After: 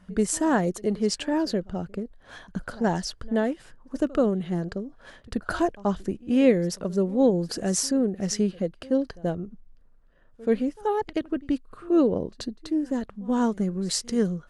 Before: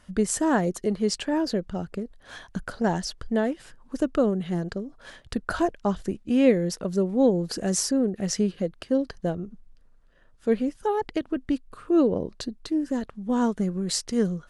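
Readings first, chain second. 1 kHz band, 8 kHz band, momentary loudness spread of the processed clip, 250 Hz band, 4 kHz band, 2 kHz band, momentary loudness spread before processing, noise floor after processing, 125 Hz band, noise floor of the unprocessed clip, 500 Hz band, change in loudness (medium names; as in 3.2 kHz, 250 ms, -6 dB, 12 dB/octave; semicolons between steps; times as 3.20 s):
0.0 dB, 0.0 dB, 13 LU, 0.0 dB, 0.0 dB, 0.0 dB, 13 LU, -55 dBFS, 0.0 dB, -56 dBFS, 0.0 dB, 0.0 dB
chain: pre-echo 81 ms -22 dB; tape noise reduction on one side only decoder only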